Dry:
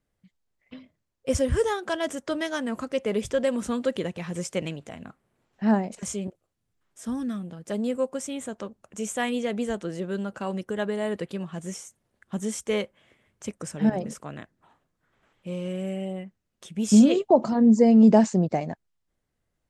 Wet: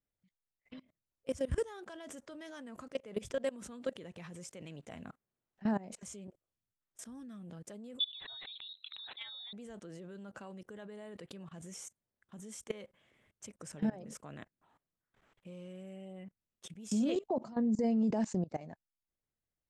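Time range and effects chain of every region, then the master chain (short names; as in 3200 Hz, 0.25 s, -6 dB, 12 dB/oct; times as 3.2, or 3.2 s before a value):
7.99–9.53 formant sharpening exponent 1.5 + inverted band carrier 4000 Hz + fast leveller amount 50%
whole clip: level quantiser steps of 23 dB; limiter -23.5 dBFS; gain -1.5 dB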